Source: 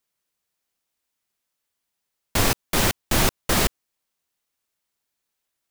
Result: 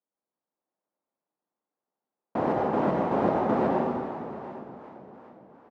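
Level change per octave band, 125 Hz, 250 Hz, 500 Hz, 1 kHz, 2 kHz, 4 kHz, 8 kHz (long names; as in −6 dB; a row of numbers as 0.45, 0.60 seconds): −7.0 dB, +2.0 dB, +3.5 dB, +2.0 dB, −12.5 dB, below −25 dB, below −35 dB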